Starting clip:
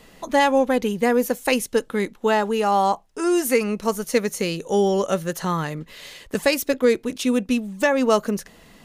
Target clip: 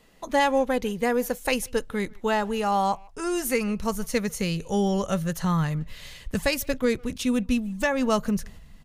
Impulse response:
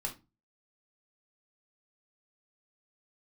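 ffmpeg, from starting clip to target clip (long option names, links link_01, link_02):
-filter_complex "[0:a]asplit=2[link_01][link_02];[link_02]adelay=150,highpass=300,lowpass=3400,asoftclip=type=hard:threshold=-16dB,volume=-25dB[link_03];[link_01][link_03]amix=inputs=2:normalize=0,agate=range=-6dB:threshold=-46dB:ratio=16:detection=peak,asubboost=boost=10:cutoff=110,volume=-3.5dB"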